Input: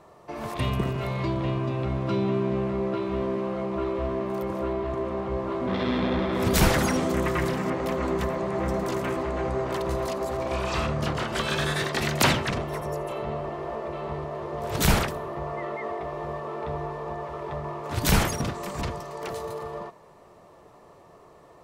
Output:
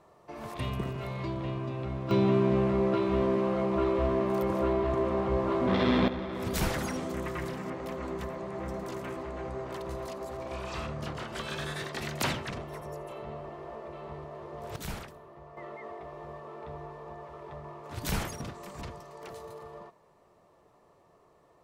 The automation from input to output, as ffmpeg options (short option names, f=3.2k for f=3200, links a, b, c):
-af "asetnsamples=n=441:p=0,asendcmd='2.11 volume volume 1dB;6.08 volume volume -9.5dB;14.76 volume volume -17.5dB;15.57 volume volume -10.5dB',volume=-7dB"